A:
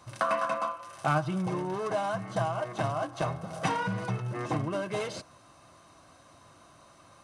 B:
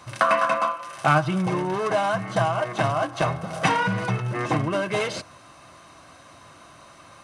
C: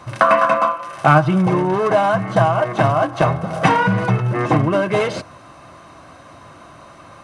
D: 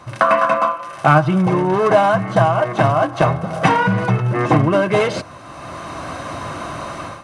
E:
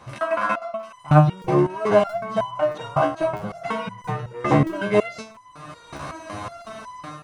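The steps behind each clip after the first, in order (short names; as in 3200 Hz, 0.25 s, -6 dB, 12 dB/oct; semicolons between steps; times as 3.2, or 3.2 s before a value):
bell 2200 Hz +5 dB 1.5 oct; notches 50/100 Hz; gain +6.5 dB
high shelf 2200 Hz -10 dB; gain +8.5 dB
AGC gain up to 15 dB; gain -1 dB
crackling interface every 0.65 s, samples 1024, zero, from 0.77; stepped resonator 5.4 Hz 71–1000 Hz; gain +5 dB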